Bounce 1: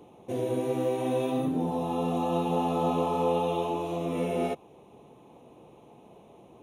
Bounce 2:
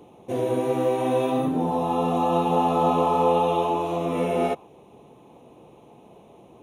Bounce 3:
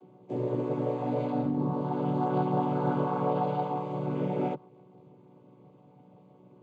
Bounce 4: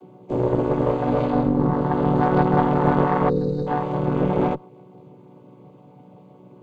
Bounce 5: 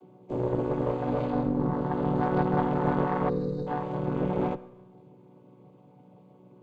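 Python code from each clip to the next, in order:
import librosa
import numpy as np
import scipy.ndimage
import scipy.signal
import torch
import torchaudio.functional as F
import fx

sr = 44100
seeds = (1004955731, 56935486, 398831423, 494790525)

y1 = fx.dynamic_eq(x, sr, hz=1100.0, q=0.7, threshold_db=-42.0, ratio=4.0, max_db=6)
y1 = F.gain(torch.from_numpy(y1), 3.0).numpy()
y2 = fx.chord_vocoder(y1, sr, chord='minor triad', root=47)
y2 = F.gain(torch.from_numpy(y2), -6.0).numpy()
y3 = fx.cheby_harmonics(y2, sr, harmonics=(2, 6), levels_db=(-8, -28), full_scale_db=-16.0)
y3 = fx.spec_box(y3, sr, start_s=3.29, length_s=0.38, low_hz=540.0, high_hz=3700.0, gain_db=-25)
y3 = F.gain(torch.from_numpy(y3), 8.5).numpy()
y4 = fx.rev_schroeder(y3, sr, rt60_s=1.0, comb_ms=33, drr_db=16.0)
y4 = F.gain(torch.from_numpy(y4), -7.5).numpy()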